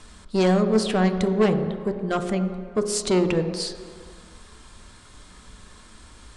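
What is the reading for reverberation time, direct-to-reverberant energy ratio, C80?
no single decay rate, 6.0 dB, 9.5 dB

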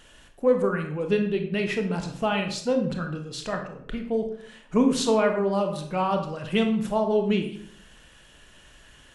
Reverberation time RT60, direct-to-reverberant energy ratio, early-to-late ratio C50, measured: 0.60 s, 4.0 dB, 7.5 dB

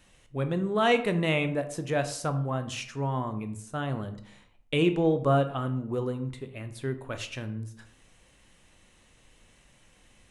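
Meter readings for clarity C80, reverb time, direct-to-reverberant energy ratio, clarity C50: 15.5 dB, 0.60 s, 8.5 dB, 12.5 dB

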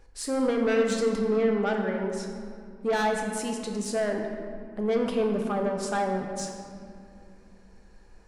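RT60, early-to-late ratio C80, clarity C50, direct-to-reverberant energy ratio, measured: 2.4 s, 5.0 dB, 3.5 dB, 1.5 dB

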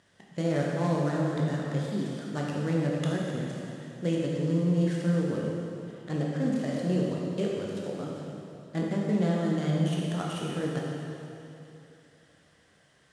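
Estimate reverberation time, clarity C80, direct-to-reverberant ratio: 2.9 s, 0.5 dB, -3.5 dB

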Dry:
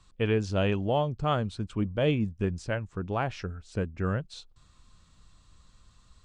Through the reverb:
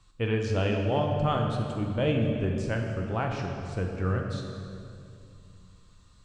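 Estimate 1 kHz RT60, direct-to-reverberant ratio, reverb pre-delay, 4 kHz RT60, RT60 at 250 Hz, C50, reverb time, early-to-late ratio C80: 2.3 s, 1.0 dB, 4 ms, 1.8 s, 3.1 s, 3.0 dB, 2.5 s, 4.0 dB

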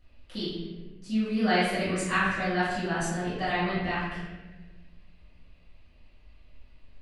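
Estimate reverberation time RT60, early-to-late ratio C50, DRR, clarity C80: 1.2 s, -1.0 dB, -13.5 dB, 2.5 dB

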